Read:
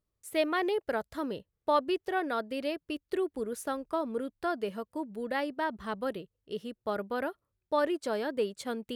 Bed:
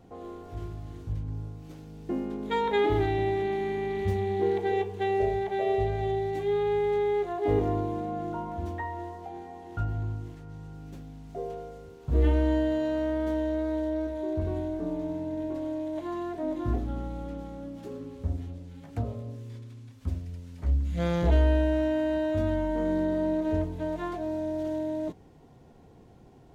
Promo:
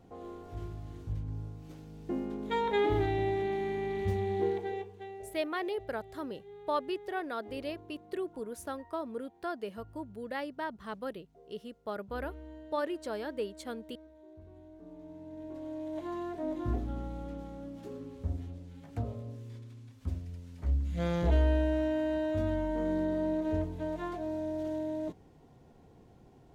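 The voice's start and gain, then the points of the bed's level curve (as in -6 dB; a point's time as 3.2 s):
5.00 s, -5.0 dB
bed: 4.43 s -3.5 dB
5.37 s -23 dB
14.52 s -23 dB
15.99 s -4 dB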